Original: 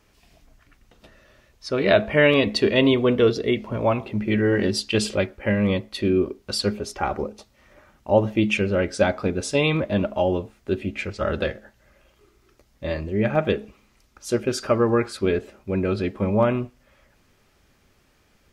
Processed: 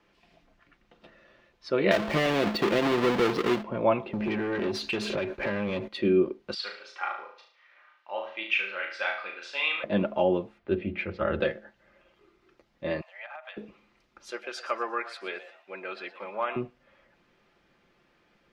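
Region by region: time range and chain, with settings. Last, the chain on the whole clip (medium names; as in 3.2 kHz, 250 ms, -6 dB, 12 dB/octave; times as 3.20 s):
1.91–3.63 s: square wave that keeps the level + compression 5:1, threshold -19 dBFS
4.13–5.88 s: rippled EQ curve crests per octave 1.5, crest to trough 7 dB + compression 16:1, threshold -28 dBFS + waveshaping leveller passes 3
6.54–9.84 s: Butterworth band-pass 2.4 kHz, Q 0.65 + flutter echo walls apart 6.2 m, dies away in 0.5 s
10.58–11.40 s: low-pass 3.4 kHz + peaking EQ 85 Hz +14.5 dB 0.36 oct + hum notches 60/120/180/240/300/360/420/480/540 Hz
13.01–13.57 s: steep high-pass 640 Hz 72 dB/octave + compression 10:1, threshold -35 dBFS
14.30–16.56 s: high-pass 940 Hz + frequency-shifting echo 118 ms, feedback 32%, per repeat +110 Hz, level -14.5 dB
whole clip: three-band isolator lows -12 dB, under 160 Hz, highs -19 dB, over 4.3 kHz; comb 5.8 ms, depth 34%; trim -2.5 dB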